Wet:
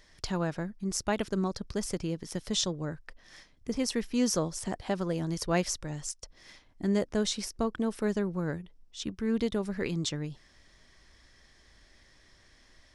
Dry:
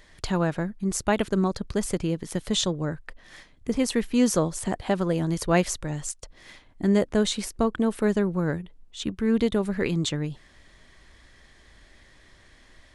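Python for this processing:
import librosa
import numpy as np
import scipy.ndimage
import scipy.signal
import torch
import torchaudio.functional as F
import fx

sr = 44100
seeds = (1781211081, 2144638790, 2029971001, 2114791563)

y = fx.peak_eq(x, sr, hz=5400.0, db=10.0, octaves=0.39)
y = y * librosa.db_to_amplitude(-6.5)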